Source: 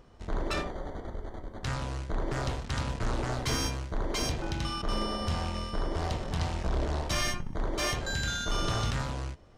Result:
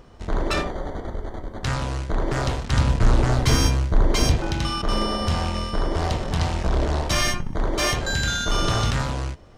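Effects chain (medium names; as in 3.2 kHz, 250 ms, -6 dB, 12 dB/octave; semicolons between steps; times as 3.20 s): 2.72–4.37 s: bass shelf 200 Hz +7.5 dB; trim +8 dB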